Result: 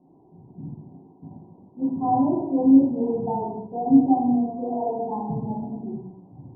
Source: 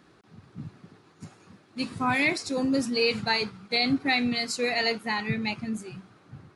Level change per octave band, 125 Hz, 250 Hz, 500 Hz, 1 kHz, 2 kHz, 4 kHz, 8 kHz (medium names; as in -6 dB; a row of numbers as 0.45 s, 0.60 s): +3.5 dB, +9.0 dB, +2.0 dB, +6.0 dB, under -40 dB, under -40 dB, under -40 dB